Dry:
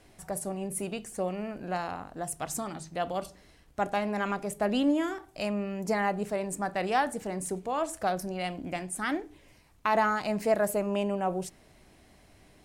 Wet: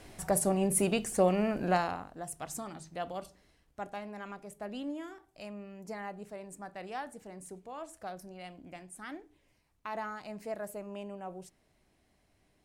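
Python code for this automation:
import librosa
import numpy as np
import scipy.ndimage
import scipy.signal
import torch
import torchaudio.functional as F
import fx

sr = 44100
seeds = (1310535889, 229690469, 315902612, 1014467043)

y = fx.gain(x, sr, db=fx.line((1.69, 6.0), (2.15, -6.0), (3.0, -6.0), (4.19, -13.0)))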